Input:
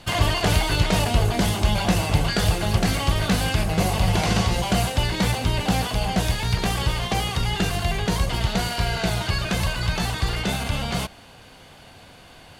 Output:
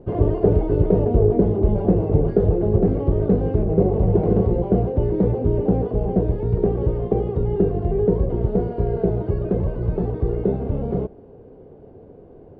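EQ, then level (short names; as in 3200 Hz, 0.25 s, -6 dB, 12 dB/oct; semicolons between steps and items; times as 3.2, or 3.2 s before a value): synth low-pass 420 Hz, resonance Q 4.9; +1.5 dB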